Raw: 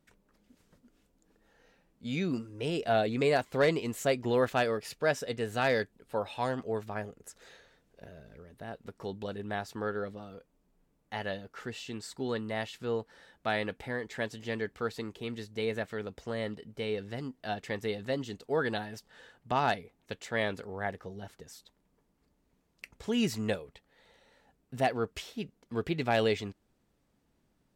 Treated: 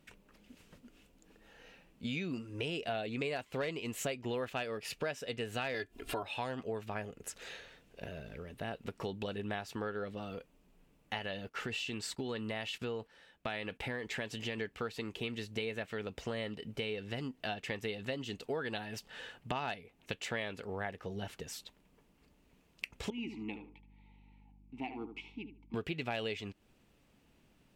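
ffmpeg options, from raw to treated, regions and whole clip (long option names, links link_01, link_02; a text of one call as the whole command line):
ffmpeg -i in.wav -filter_complex "[0:a]asettb=1/sr,asplit=3[link_01][link_02][link_03];[link_01]atrim=end=5.744[link_04];[link_02]atrim=start=5.74:end=6.23,asetpts=PTS-STARTPTS,afade=type=in:duration=0.004:curve=qsin,afade=type=out:start_time=0.486:duration=0.004:curve=qsin,aecho=1:1:2.9:0.94,atrim=end_sample=21609,acompressor=mode=upward:threshold=-35dB:ratio=2.5:attack=3.2:release=140:knee=2.83:detection=peak[link_05];[link_03]atrim=start=6.226[link_06];[link_04][link_05]acrossfade=duration=0.004:curve1=hsin:curve2=qsin[link_07];[link_07][link_06]acrossfade=duration=0.004:curve1=qsin:curve2=hsin,asettb=1/sr,asplit=3[link_08][link_09][link_10];[link_08]atrim=end=11.184[link_11];[link_09]atrim=start=11.18:end=14.58,asetpts=PTS-STARTPTS,afade=type=in:duration=0.004:curve=qsin,afade=type=out:start_time=3.396:duration=0.004:curve=qsin,agate=range=-11dB:threshold=-54dB:ratio=16:release=100:detection=peak,acompressor=threshold=-36dB:ratio=2:attack=3.2:release=140:knee=1:detection=peak[link_12];[link_10]atrim=start=14.576[link_13];[link_11][link_12]acrossfade=duration=0.004:curve1=hsin:curve2=qsin[link_14];[link_14][link_13]acrossfade=duration=0.004:curve1=qsin:curve2=hsin,asettb=1/sr,asplit=3[link_15][link_16][link_17];[link_15]atrim=end=23.104[link_18];[link_16]atrim=start=23.1:end=25.74,asetpts=PTS-STARTPTS,afade=type=in:duration=0.004:curve=qsin,afade=type=out:start_time=2.636:duration=0.004:curve=qsin,asplit=3[link_19][link_20][link_21];[link_19]bandpass=frequency=300:width_type=q:width=8,volume=0dB[link_22];[link_20]bandpass=frequency=870:width_type=q:width=8,volume=-6dB[link_23];[link_21]bandpass=frequency=2240:width_type=q:width=8,volume=-9dB[link_24];[link_22][link_23][link_24]amix=inputs=3:normalize=0,aeval=exprs='val(0)+0.000631*(sin(2*PI*50*n/s)+sin(2*PI*2*50*n/s)/2+sin(2*PI*3*50*n/s)/3+sin(2*PI*4*50*n/s)/4+sin(2*PI*5*50*n/s)/5)':channel_layout=same,asplit=2[link_25][link_26];[link_26]adelay=75,lowpass=frequency=1600:poles=1,volume=-9dB,asplit=2[link_27][link_28];[link_28]adelay=75,lowpass=frequency=1600:poles=1,volume=0.25,asplit=2[link_29][link_30];[link_30]adelay=75,lowpass=frequency=1600:poles=1,volume=0.25[link_31];[link_25][link_27][link_29][link_31]amix=inputs=4:normalize=0,atrim=end_sample=116424[link_32];[link_17]atrim=start=25.736[link_33];[link_18][link_32]acrossfade=duration=0.004:curve1=hsin:curve2=qsin[link_34];[link_34][link_33]acrossfade=duration=0.004:curve1=qsin:curve2=hsin,equalizer=frequency=2700:width=2.3:gain=9,acompressor=threshold=-41dB:ratio=5,volume=5dB" out.wav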